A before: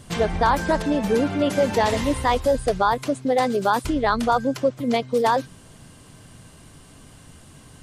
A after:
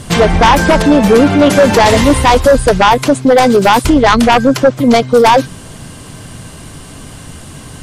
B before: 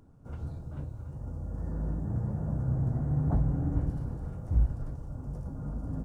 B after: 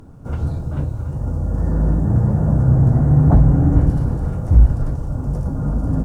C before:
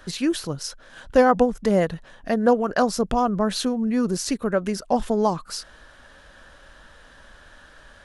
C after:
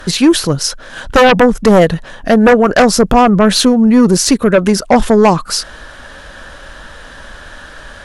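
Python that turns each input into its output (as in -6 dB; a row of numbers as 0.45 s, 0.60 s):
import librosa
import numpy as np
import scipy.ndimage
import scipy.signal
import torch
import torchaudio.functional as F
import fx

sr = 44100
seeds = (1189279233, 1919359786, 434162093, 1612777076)

y = fx.fold_sine(x, sr, drive_db=9, ceiling_db=-5.0)
y = y * 10.0 ** (-2 / 20.0) / np.max(np.abs(y))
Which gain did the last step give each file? +3.0 dB, +3.0 dB, +2.5 dB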